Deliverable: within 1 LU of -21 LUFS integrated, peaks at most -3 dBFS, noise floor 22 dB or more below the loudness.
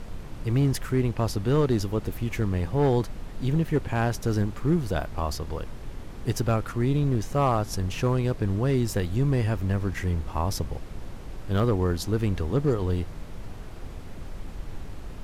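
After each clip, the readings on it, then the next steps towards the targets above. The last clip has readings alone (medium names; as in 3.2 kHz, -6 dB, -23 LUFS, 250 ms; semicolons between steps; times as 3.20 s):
clipped samples 0.7%; clipping level -15.5 dBFS; noise floor -39 dBFS; noise floor target -49 dBFS; loudness -26.5 LUFS; peak level -15.5 dBFS; loudness target -21.0 LUFS
-> clip repair -15.5 dBFS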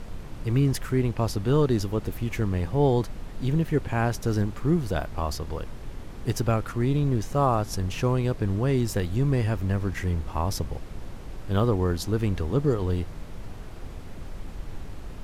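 clipped samples 0.0%; noise floor -39 dBFS; noise floor target -49 dBFS
-> noise print and reduce 10 dB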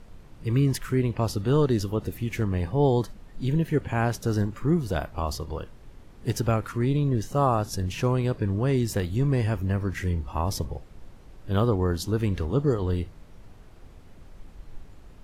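noise floor -49 dBFS; loudness -26.5 LUFS; peak level -10.0 dBFS; loudness target -21.0 LUFS
-> trim +5.5 dB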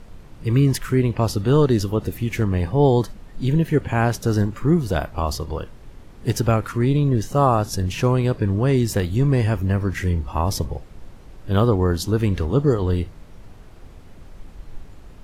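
loudness -21.0 LUFS; peak level -4.5 dBFS; noise floor -43 dBFS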